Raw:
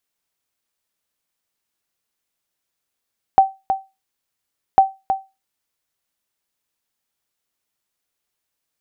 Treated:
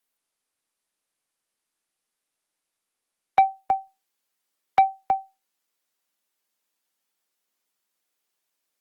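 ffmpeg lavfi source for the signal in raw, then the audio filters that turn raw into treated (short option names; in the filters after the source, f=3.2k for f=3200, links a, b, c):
-f lavfi -i "aevalsrc='0.75*(sin(2*PI*773*mod(t,1.4))*exp(-6.91*mod(t,1.4)/0.24)+0.376*sin(2*PI*773*max(mod(t,1.4)-0.32,0))*exp(-6.91*max(mod(t,1.4)-0.32,0)/0.24))':d=2.8:s=44100"
-filter_complex "[0:a]acrossover=split=160|240|1100[a][b][c][d];[a]acrusher=bits=6:dc=4:mix=0:aa=0.000001[e];[e][b][c][d]amix=inputs=4:normalize=0,asoftclip=type=tanh:threshold=-10dB" -ar 48000 -c:a libopus -b:a 32k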